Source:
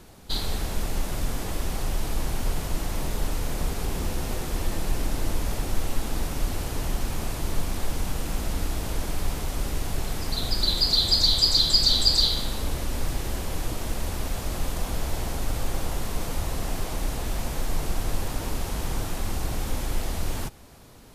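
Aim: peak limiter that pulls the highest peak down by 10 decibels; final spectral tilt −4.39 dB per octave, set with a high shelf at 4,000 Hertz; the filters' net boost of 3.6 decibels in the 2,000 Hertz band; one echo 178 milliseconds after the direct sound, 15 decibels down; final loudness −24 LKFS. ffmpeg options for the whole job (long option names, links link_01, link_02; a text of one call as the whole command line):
ffmpeg -i in.wav -af "equalizer=frequency=2000:width_type=o:gain=6.5,highshelf=frequency=4000:gain=-8.5,alimiter=limit=-19.5dB:level=0:latency=1,aecho=1:1:178:0.178,volume=8dB" out.wav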